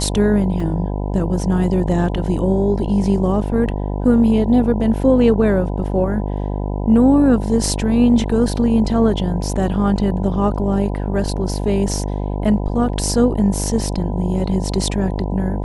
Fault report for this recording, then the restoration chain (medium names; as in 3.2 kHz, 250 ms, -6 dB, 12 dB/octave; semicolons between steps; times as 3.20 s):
buzz 50 Hz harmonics 20 -22 dBFS
0.60 s: dropout 3.6 ms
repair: de-hum 50 Hz, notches 20; interpolate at 0.60 s, 3.6 ms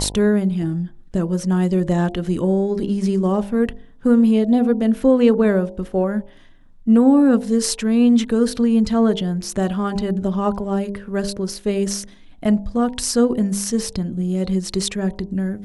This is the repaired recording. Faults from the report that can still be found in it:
nothing left